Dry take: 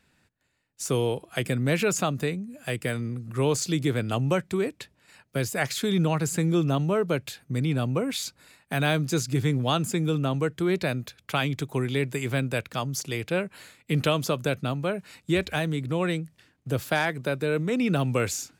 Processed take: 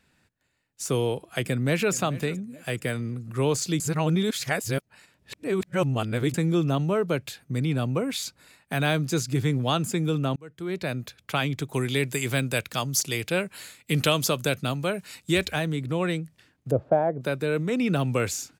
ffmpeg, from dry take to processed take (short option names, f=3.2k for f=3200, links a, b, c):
-filter_complex "[0:a]asplit=2[a][b];[b]afade=t=in:st=1.48:d=0.01,afade=t=out:st=1.93:d=0.01,aecho=0:1:430|860|1290:0.125893|0.0377678|0.0113303[c];[a][c]amix=inputs=2:normalize=0,asettb=1/sr,asplit=3[d][e][f];[d]atrim=end=11.734[g];[e]atrim=start=11.73:end=15.51,asetpts=PTS-STARTPTS,afade=t=in:d=0.004:c=qsin,afade=t=out:st=3.776:d=0.004:c=qsin,highshelf=f=3k:g=9.5[h];[f]atrim=start=15.506[i];[g][h]acrossfade=d=0.004:c1=hsin:c2=qsin[j];[j][i]acrossfade=d=0.004:c1=qsin:c2=hsin,asettb=1/sr,asplit=3[k][l][m];[k]atrim=end=16.714[n];[l]atrim=start=16.71:end=17.21,asetpts=PTS-STARTPTS,afade=t=in:d=0.004:c=qsin,afade=t=out:st=0.496:d=0.004:c=qsin,lowpass=f=620:t=q:w=2.6[o];[m]atrim=start=17.206[p];[n][o]acrossfade=d=0.004:c1=hsin:c2=qsin[q];[q][p]acrossfade=d=0.004:c1=qsin:c2=hsin,asplit=4[r][s][t][u];[r]atrim=end=3.802[v];[s]atrim=start=3.798:end=6.342,asetpts=PTS-STARTPTS,areverse[w];[t]atrim=start=6.338:end=10.36,asetpts=PTS-STARTPTS,afade=t=out:st=4.018:d=0.004:c=hsin[x];[u]atrim=start=10.36,asetpts=PTS-STARTPTS,afade=t=in:d=0.69[y];[v][w]acrossfade=d=0.004:c1=hsin:c2=hsin[z];[x][y]concat=n=2:v=0:a=1[aa];[z][aa]acrossfade=d=0.004:c1=hsin:c2=hsin"